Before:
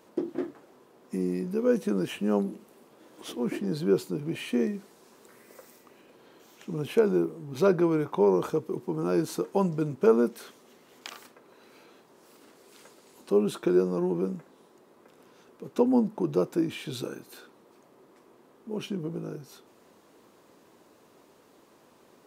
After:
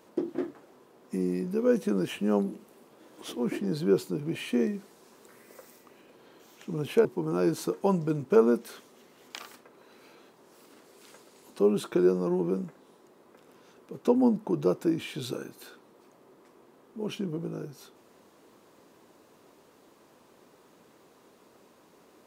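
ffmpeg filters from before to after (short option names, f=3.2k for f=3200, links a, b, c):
-filter_complex "[0:a]asplit=2[a][b];[a]atrim=end=7.052[c];[b]atrim=start=8.758[d];[c][d]acrossfade=d=0.004:c1=hsin:c2=hsin"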